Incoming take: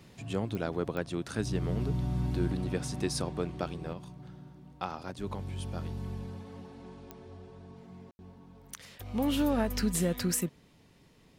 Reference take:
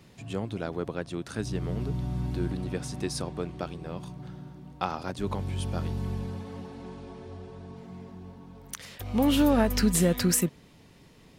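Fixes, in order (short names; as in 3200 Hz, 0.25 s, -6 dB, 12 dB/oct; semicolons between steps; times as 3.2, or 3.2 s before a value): de-click; room tone fill 8.11–8.19; gain correction +6 dB, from 3.93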